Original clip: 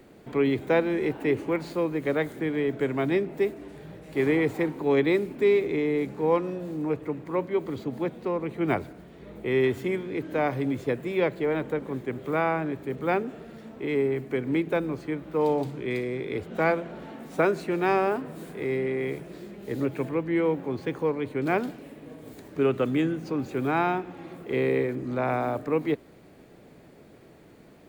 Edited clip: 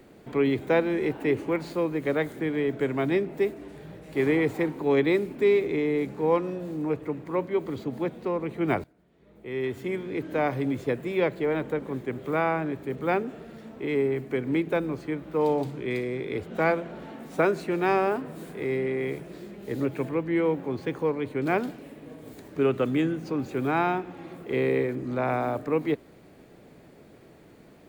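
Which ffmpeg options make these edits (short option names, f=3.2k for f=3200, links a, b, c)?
-filter_complex "[0:a]asplit=2[a][b];[a]atrim=end=8.84,asetpts=PTS-STARTPTS,afade=t=out:st=8.836:d=0.004:c=hsin:silence=0.11885[c];[b]atrim=start=8.84,asetpts=PTS-STARTPTS,afade=t=in:d=1.25:c=qua:silence=0.11885[d];[c][d]concat=n=2:v=0:a=1"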